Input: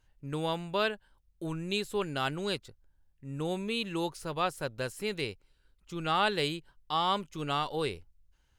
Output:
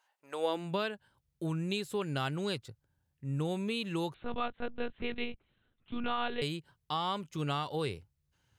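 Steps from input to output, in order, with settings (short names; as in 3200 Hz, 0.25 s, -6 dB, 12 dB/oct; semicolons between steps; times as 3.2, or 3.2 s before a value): compressor 2.5:1, threshold -32 dBFS, peak gain reduction 7 dB; high-pass sweep 830 Hz -> 110 Hz, 0.27–0.87; 4.14–6.42 monotone LPC vocoder at 8 kHz 240 Hz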